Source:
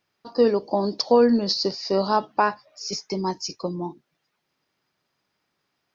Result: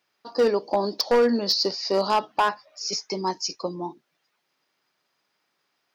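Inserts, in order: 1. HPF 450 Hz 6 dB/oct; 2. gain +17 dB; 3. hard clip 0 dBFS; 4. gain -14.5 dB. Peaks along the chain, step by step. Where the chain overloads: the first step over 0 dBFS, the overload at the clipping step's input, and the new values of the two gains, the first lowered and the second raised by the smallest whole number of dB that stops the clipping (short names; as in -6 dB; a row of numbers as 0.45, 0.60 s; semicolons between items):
-8.5, +8.5, 0.0, -14.5 dBFS; step 2, 8.5 dB; step 2 +8 dB, step 4 -5.5 dB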